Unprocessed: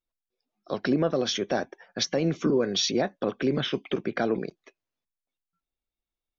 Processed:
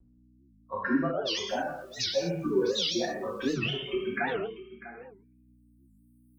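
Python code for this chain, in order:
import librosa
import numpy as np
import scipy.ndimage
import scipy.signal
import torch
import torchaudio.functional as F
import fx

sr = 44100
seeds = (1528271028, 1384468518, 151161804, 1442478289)

y = fx.bin_expand(x, sr, power=3.0)
y = fx.recorder_agc(y, sr, target_db=-21.0, rise_db_per_s=16.0, max_gain_db=30)
y = fx.add_hum(y, sr, base_hz=60, snr_db=22)
y = fx.low_shelf(y, sr, hz=360.0, db=-3.5)
y = fx.rev_gated(y, sr, seeds[0], gate_ms=270, shape='falling', drr_db=-6.0)
y = fx.vibrato(y, sr, rate_hz=0.98, depth_cents=35.0)
y = fx.dmg_noise_colour(y, sr, seeds[1], colour='white', level_db=-59.0, at=(1.48, 3.54), fade=0.02)
y = fx.high_shelf(y, sr, hz=5500.0, db=-5.0)
y = y + 10.0 ** (-15.0 / 20.0) * np.pad(y, (int(647 * sr / 1000.0), 0))[:len(y)]
y = fx.record_warp(y, sr, rpm=78.0, depth_cents=250.0)
y = y * librosa.db_to_amplitude(-4.0)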